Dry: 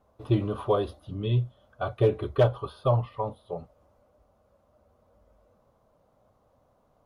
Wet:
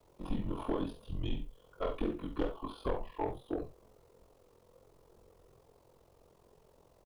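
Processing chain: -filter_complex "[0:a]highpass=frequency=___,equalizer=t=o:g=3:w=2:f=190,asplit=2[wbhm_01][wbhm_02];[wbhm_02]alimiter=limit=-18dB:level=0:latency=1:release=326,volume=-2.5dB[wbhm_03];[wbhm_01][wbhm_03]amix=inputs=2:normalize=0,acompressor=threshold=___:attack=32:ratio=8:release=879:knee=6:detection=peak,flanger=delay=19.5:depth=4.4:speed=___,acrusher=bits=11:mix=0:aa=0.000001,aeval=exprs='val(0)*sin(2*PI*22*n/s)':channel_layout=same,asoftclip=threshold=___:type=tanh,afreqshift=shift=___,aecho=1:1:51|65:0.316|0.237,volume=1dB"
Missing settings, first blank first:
63, -23dB, 2.3, -25.5dB, -110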